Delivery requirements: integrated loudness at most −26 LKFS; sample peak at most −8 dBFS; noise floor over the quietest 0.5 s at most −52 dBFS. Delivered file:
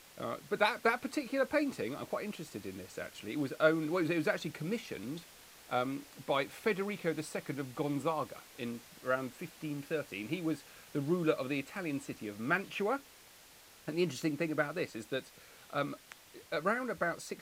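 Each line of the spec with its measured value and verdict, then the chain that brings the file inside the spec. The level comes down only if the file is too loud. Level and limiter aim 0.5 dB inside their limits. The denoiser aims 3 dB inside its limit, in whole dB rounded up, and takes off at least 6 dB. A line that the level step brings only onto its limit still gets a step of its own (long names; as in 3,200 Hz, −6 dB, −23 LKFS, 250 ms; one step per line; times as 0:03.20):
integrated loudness −36.0 LKFS: in spec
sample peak −13.5 dBFS: in spec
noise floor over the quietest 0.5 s −58 dBFS: in spec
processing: no processing needed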